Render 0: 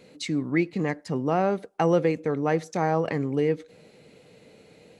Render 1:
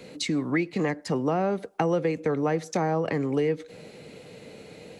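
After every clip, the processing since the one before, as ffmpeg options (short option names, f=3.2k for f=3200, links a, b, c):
-filter_complex "[0:a]acrossover=split=210|450[a][b][c];[a]acompressor=threshold=-43dB:ratio=4[d];[b]acompressor=threshold=-38dB:ratio=4[e];[c]acompressor=threshold=-36dB:ratio=4[f];[d][e][f]amix=inputs=3:normalize=0,volume=7.5dB"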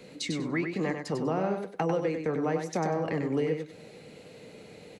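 -af "flanger=delay=4.4:depth=9.2:regen=-68:speed=1.1:shape=triangular,asoftclip=type=hard:threshold=-18dB,aecho=1:1:97|194|291:0.501|0.1|0.02"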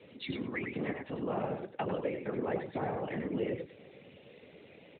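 -af "afftfilt=real='hypot(re,im)*cos(2*PI*random(0))':imag='hypot(re,im)*sin(2*PI*random(1))':win_size=512:overlap=0.75,crystalizer=i=3.5:c=0" -ar 8000 -c:a libopencore_amrnb -b:a 12200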